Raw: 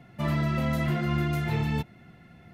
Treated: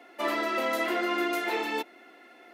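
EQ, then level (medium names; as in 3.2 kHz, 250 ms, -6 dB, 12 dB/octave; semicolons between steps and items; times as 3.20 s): steep high-pass 290 Hz 48 dB/octave; +5.0 dB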